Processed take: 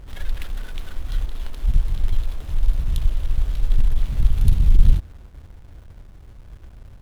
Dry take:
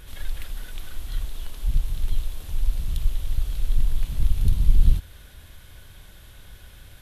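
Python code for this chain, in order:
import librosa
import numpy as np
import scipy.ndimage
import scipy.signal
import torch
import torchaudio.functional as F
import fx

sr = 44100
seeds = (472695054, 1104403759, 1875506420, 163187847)

y = fx.diode_clip(x, sr, knee_db=-8.0)
y = fx.backlash(y, sr, play_db=-39.5)
y = y * librosa.db_to_amplitude(5.5)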